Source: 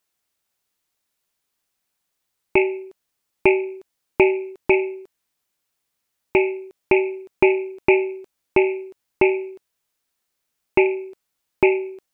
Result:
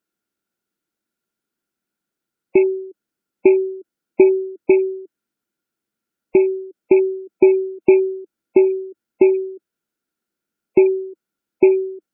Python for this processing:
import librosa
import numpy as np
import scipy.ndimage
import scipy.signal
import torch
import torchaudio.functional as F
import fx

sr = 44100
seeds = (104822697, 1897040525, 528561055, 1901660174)

y = fx.spec_gate(x, sr, threshold_db=-20, keep='strong')
y = fx.small_body(y, sr, hz=(220.0, 320.0, 1400.0), ring_ms=30, db=16)
y = y * librosa.db_to_amplitude(-9.0)